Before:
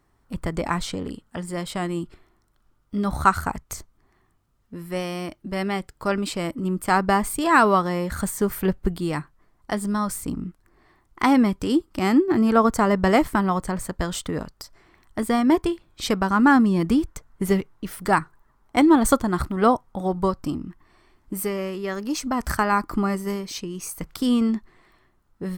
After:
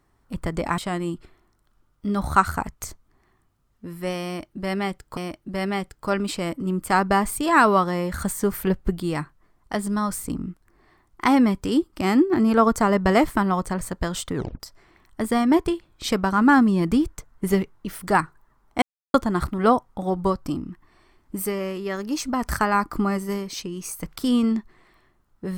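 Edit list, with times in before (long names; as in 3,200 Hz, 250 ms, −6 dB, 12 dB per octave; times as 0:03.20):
0:00.78–0:01.67: remove
0:05.15–0:06.06: repeat, 2 plays
0:14.33: tape stop 0.25 s
0:18.80–0:19.12: silence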